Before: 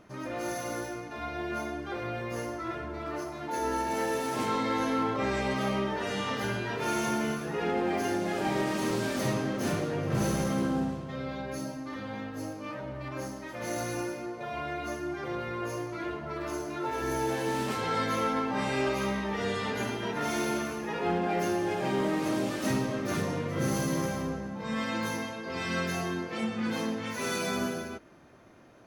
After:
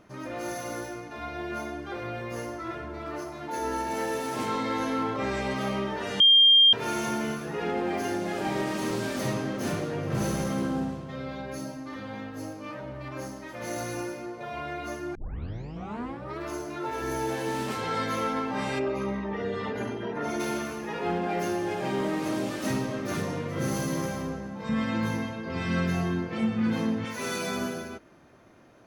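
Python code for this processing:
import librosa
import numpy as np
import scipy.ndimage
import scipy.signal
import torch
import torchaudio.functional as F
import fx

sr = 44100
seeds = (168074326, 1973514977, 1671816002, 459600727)

y = fx.envelope_sharpen(x, sr, power=1.5, at=(18.78, 20.39), fade=0.02)
y = fx.bass_treble(y, sr, bass_db=10, treble_db=-6, at=(24.69, 27.05))
y = fx.edit(y, sr, fx.bleep(start_s=6.2, length_s=0.53, hz=3200.0, db=-13.5),
    fx.tape_start(start_s=15.15, length_s=1.25), tone=tone)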